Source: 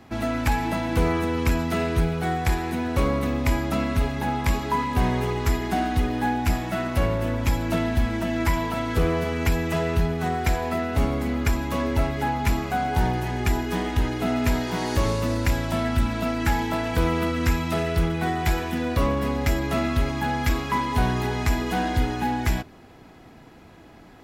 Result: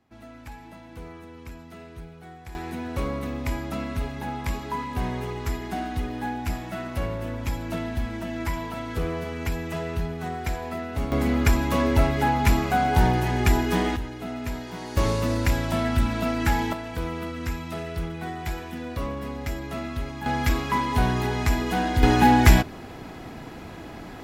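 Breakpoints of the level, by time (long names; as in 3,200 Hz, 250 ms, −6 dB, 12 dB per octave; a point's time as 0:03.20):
−19 dB
from 0:02.55 −6 dB
from 0:11.12 +3 dB
from 0:13.96 −9 dB
from 0:14.97 0 dB
from 0:16.73 −8 dB
from 0:20.26 0 dB
from 0:22.03 +9 dB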